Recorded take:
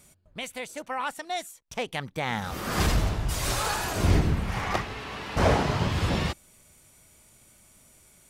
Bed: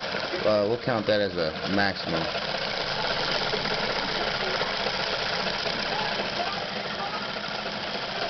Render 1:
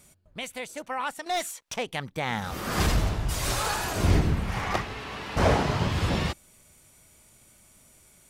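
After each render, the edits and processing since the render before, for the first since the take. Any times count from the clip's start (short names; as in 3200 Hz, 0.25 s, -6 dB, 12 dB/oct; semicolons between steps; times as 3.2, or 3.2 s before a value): 1.26–1.76 overdrive pedal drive 20 dB, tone 5600 Hz, clips at -21 dBFS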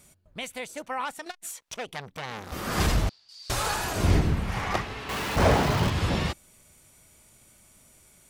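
1.05–2.52 core saturation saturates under 2700 Hz; 3.09–3.5 band-pass 4600 Hz, Q 14; 5.09–5.9 zero-crossing step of -29.5 dBFS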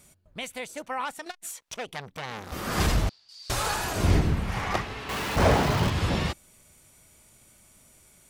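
nothing audible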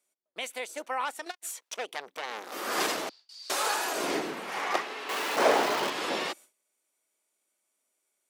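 gate with hold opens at -43 dBFS; HPF 320 Hz 24 dB/oct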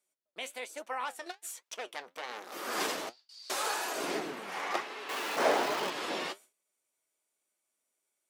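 flange 1.2 Hz, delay 4.5 ms, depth 7.6 ms, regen +64%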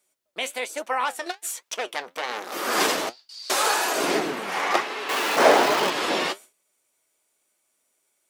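gain +11 dB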